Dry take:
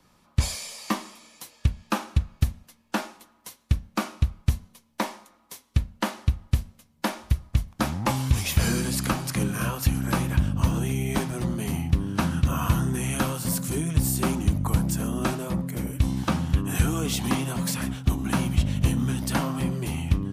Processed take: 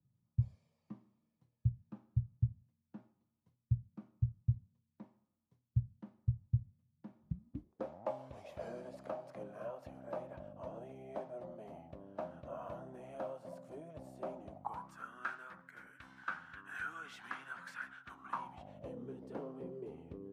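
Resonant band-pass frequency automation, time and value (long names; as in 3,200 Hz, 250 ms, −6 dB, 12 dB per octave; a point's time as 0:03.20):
resonant band-pass, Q 8.3
0:07.15 120 Hz
0:07.94 610 Hz
0:14.47 610 Hz
0:15.10 1,500 Hz
0:18.08 1,500 Hz
0:19.07 440 Hz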